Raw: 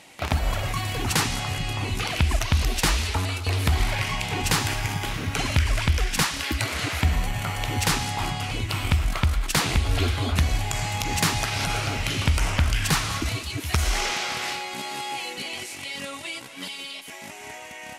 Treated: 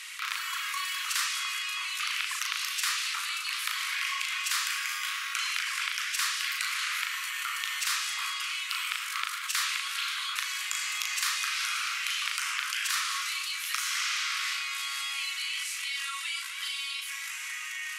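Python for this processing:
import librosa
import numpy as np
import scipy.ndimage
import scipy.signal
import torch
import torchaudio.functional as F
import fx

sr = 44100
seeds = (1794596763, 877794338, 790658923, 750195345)

y = scipy.signal.sosfilt(scipy.signal.butter(12, 1100.0, 'highpass', fs=sr, output='sos'), x)
y = fx.doubler(y, sr, ms=37.0, db=-5.5)
y = fx.env_flatten(y, sr, amount_pct=50)
y = y * 10.0 ** (-6.5 / 20.0)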